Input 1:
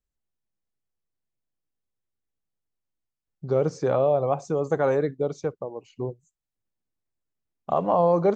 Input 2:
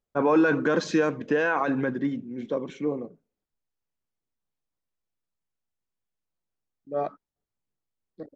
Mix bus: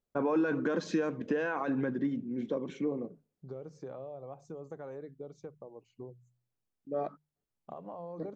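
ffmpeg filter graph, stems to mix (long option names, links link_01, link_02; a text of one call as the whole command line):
ffmpeg -i stem1.wav -i stem2.wav -filter_complex "[0:a]bandreject=frequency=61.16:width_type=h:width=4,bandreject=frequency=122.32:width_type=h:width=4,bandreject=frequency=183.48:width_type=h:width=4,acompressor=threshold=-28dB:ratio=4,volume=-16.5dB[link_01];[1:a]acompressor=threshold=-32dB:ratio=2,volume=-4dB[link_02];[link_01][link_02]amix=inputs=2:normalize=0,equalizer=frequency=200:width=0.36:gain=5,bandreject=frequency=50:width_type=h:width=6,bandreject=frequency=100:width_type=h:width=6,bandreject=frequency=150:width_type=h:width=6" out.wav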